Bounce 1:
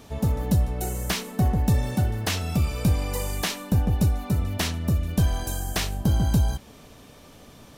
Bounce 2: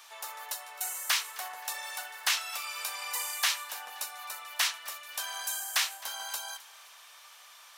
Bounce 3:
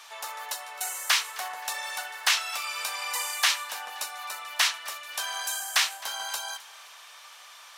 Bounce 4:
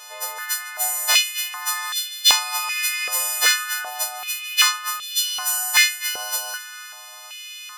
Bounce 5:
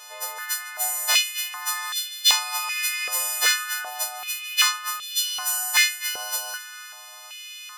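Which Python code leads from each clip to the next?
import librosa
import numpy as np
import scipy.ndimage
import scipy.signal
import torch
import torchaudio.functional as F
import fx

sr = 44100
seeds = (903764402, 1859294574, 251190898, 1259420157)

y1 = scipy.signal.sosfilt(scipy.signal.butter(4, 1000.0, 'highpass', fs=sr, output='sos'), x)
y1 = fx.echo_feedback(y1, sr, ms=262, feedback_pct=41, wet_db=-20)
y1 = y1 * 10.0 ** (1.5 / 20.0)
y2 = fx.high_shelf(y1, sr, hz=12000.0, db=-10.5)
y2 = y2 * 10.0 ** (5.5 / 20.0)
y3 = fx.freq_snap(y2, sr, grid_st=3)
y3 = 10.0 ** (-11.0 / 20.0) * np.tanh(y3 / 10.0 ** (-11.0 / 20.0))
y3 = fx.filter_held_highpass(y3, sr, hz=2.6, low_hz=490.0, high_hz=3500.0)
y3 = y3 * 10.0 ** (-1.0 / 20.0)
y4 = fx.transformer_sat(y3, sr, knee_hz=2700.0)
y4 = y4 * 10.0 ** (-2.5 / 20.0)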